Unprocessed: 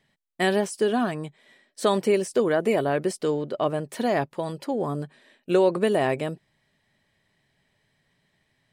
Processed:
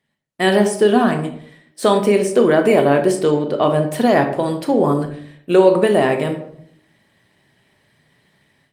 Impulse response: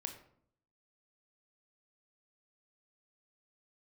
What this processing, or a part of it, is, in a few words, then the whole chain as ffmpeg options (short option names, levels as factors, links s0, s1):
far-field microphone of a smart speaker: -filter_complex "[1:a]atrim=start_sample=2205[s0];[0:a][s0]afir=irnorm=-1:irlink=0,highpass=91,dynaudnorm=f=270:g=3:m=5.62" -ar 48000 -c:a libopus -b:a 32k